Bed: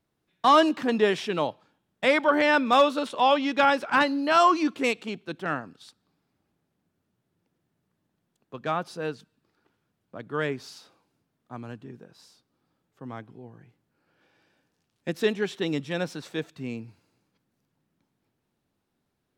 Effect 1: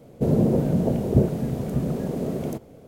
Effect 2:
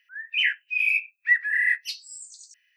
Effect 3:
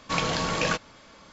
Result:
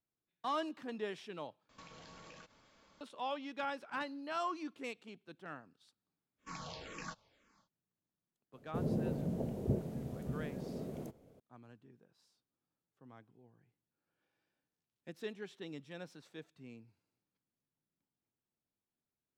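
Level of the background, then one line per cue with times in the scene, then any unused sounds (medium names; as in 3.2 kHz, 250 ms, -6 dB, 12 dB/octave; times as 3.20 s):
bed -18.5 dB
1.69 s: replace with 3 -15.5 dB + compression 20:1, threshold -35 dBFS
6.37 s: add 3 -17.5 dB, fades 0.10 s + barber-pole phaser -2 Hz
8.53 s: add 1 -15.5 dB
not used: 2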